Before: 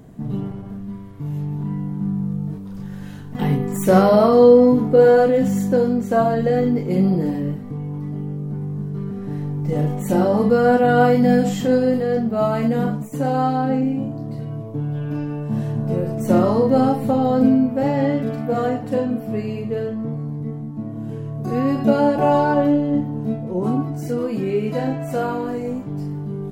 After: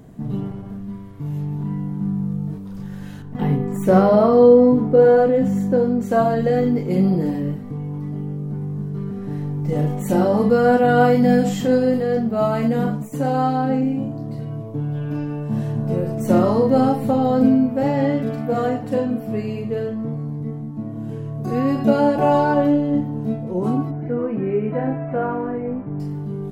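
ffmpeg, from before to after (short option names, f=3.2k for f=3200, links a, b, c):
-filter_complex "[0:a]asettb=1/sr,asplit=3[a][b][c];[a]atrim=end=3.224[d];[b]atrim=start=3.22:end=6.01,asetpts=PTS-STARTPTS,afade=t=in:d=0.004:c=qsin,afade=t=out:st=2.786:d=0.004:c=qsin,highshelf=f=2.4k:g=-10.5[e];[c]atrim=start=6.006[f];[d][e]acrossfade=d=0.004:c1=hsin:c2=qsin[g];[g][f]acrossfade=d=0.004:c1=qsin:c2=hsin,asettb=1/sr,asplit=3[h][i][j];[h]atrim=end=23.914[k];[i]atrim=start=23.91:end=26,asetpts=PTS-STARTPTS,afade=t=in:d=0.004:c=qsin,afade=t=out:st=2.086:d=0.004:c=qsin,lowpass=f=2.1k:w=0.5412,lowpass=f=2.1k:w=1.3066[l];[j]atrim=start=25.996[m];[k][l]acrossfade=d=0.004:c1=hsin:c2=qsin[n];[n][m]acrossfade=d=0.004:c1=qsin:c2=hsin"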